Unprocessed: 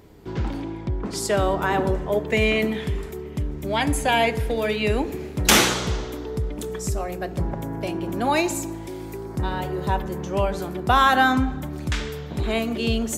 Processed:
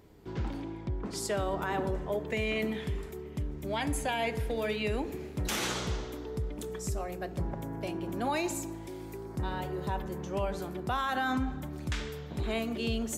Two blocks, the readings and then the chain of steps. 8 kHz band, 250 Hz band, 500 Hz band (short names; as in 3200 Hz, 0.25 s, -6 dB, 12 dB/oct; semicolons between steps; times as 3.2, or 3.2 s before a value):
-12.0 dB, -9.0 dB, -9.5 dB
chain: limiter -14.5 dBFS, peak gain reduction 11 dB; gain -8 dB